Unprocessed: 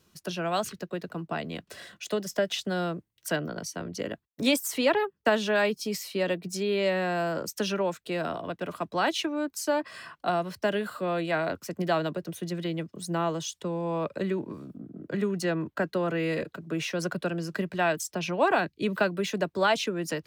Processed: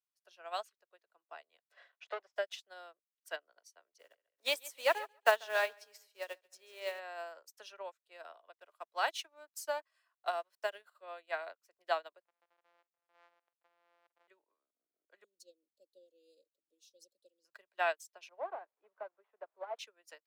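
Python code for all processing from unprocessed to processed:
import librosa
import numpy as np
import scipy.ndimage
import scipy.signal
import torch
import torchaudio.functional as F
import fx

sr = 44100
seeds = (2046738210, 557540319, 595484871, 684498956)

y = fx.chain(x, sr, fx.leveller(passes=3),
    fx.bandpass_edges(low_hz=330.0, high_hz=2300.0), at=(1.72, 2.34))
y = fx.chain(y, sr, fx.block_float(bits=5),
    fx.echo_feedback(ms=140, feedback_pct=44, wet_db=-12.0), at=(3.99, 7.0))
y = fx.chain(y, sr, fx.high_shelf(hz=8000.0, db=8.5),
    fx.backlash(play_db=-50.0), at=(8.56, 10.82))
y = fx.chain(y, sr, fx.sample_sort(block=256),
    fx.lowpass(hz=2600.0, slope=12),
    fx.level_steps(step_db=17), at=(12.21, 14.28))
y = fx.chain(y, sr, fx.cheby2_bandstop(low_hz=850.0, high_hz=2100.0, order=4, stop_db=50),
    fx.comb(ms=3.7, depth=0.56), at=(15.24, 17.45))
y = fx.chain(y, sr, fx.delta_mod(bps=32000, step_db=-40.0),
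    fx.lowpass(hz=1100.0, slope=12),
    fx.low_shelf(hz=210.0, db=-4.5), at=(18.29, 19.79))
y = scipy.signal.sosfilt(scipy.signal.butter(4, 570.0, 'highpass', fs=sr, output='sos'), y)
y = fx.upward_expand(y, sr, threshold_db=-44.0, expansion=2.5)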